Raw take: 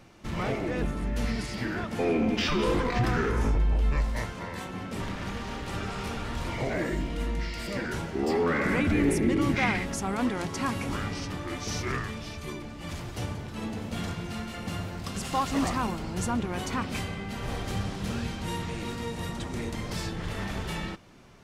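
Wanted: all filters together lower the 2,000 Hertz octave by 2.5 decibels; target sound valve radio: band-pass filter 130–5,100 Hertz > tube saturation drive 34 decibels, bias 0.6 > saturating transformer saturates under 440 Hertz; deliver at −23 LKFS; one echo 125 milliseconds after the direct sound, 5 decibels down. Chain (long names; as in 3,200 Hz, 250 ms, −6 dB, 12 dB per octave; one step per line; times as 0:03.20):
band-pass filter 130–5,100 Hz
parametric band 2,000 Hz −3 dB
single-tap delay 125 ms −5 dB
tube saturation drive 34 dB, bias 0.6
saturating transformer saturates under 440 Hz
level +19 dB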